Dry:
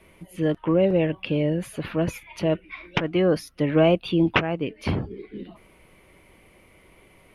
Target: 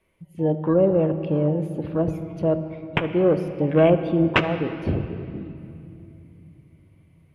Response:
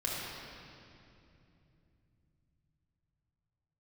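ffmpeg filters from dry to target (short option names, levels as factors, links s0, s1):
-filter_complex "[0:a]afwtdn=0.0355,asplit=2[s0][s1];[1:a]atrim=start_sample=2205[s2];[s1][s2]afir=irnorm=-1:irlink=0,volume=0.224[s3];[s0][s3]amix=inputs=2:normalize=0"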